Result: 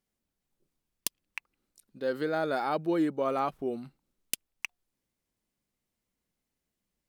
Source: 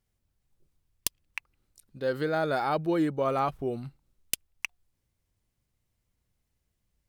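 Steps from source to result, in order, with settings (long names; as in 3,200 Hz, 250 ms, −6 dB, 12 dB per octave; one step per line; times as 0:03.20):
low shelf with overshoot 150 Hz −10 dB, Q 1.5
level −2.5 dB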